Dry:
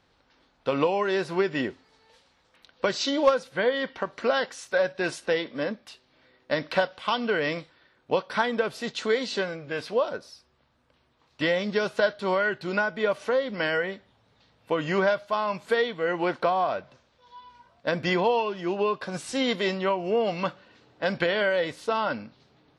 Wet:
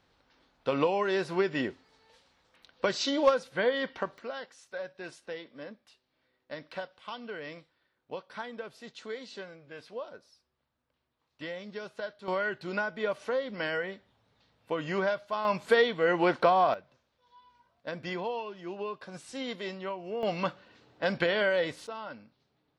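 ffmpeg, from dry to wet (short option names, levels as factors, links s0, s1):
-af "asetnsamples=n=441:p=0,asendcmd='4.18 volume volume -14.5dB;12.28 volume volume -6dB;15.45 volume volume 1dB;16.74 volume volume -11dB;20.23 volume volume -2.5dB;21.87 volume volume -14dB',volume=0.708"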